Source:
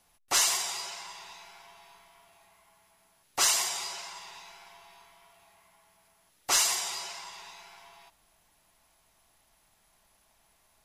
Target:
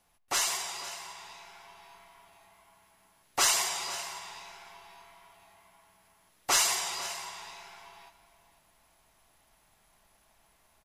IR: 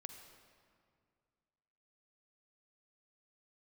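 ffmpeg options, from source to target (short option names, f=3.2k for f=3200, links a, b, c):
-filter_complex "[0:a]dynaudnorm=f=980:g=3:m=4dB,aecho=1:1:500:0.158,asplit=2[a][b];[1:a]atrim=start_sample=2205,lowpass=3.6k[c];[b][c]afir=irnorm=-1:irlink=0,volume=-2.5dB[d];[a][d]amix=inputs=2:normalize=0,volume=-4.5dB"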